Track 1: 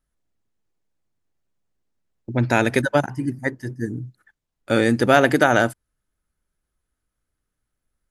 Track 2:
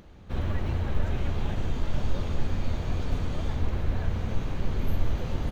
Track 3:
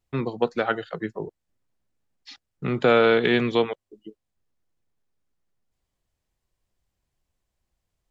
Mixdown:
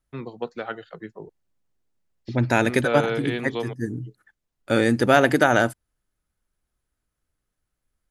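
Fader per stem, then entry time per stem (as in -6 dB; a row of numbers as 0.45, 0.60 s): -1.5 dB, off, -7.5 dB; 0.00 s, off, 0.00 s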